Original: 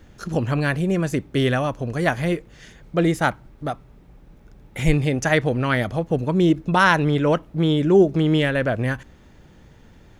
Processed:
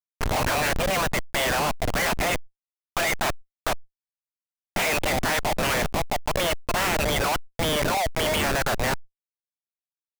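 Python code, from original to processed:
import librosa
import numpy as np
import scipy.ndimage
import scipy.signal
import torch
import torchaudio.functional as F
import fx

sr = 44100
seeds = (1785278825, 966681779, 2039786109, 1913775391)

p1 = fx.spec_clip(x, sr, under_db=22)
p2 = fx.echo_filtered(p1, sr, ms=216, feedback_pct=26, hz=1400.0, wet_db=-17)
p3 = fx.fold_sine(p2, sr, drive_db=6, ceiling_db=0.0)
p4 = p2 + (p3 * librosa.db_to_amplitude(-4.0))
p5 = scipy.signal.sosfilt(scipy.signal.butter(2, 2800.0, 'lowpass', fs=sr, output='sos'), p4)
p6 = fx.rider(p5, sr, range_db=4, speed_s=2.0)
p7 = fx.dereverb_blind(p6, sr, rt60_s=1.4)
p8 = scipy.signal.sosfilt(scipy.signal.butter(8, 600.0, 'highpass', fs=sr, output='sos'), p7)
p9 = fx.dynamic_eq(p8, sr, hz=1200.0, q=1.8, threshold_db=-30.0, ratio=4.0, max_db=-6)
p10 = fx.schmitt(p9, sr, flips_db=-23.0)
p11 = fx.env_flatten(p10, sr, amount_pct=70)
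y = p11 * librosa.db_to_amplitude(-4.0)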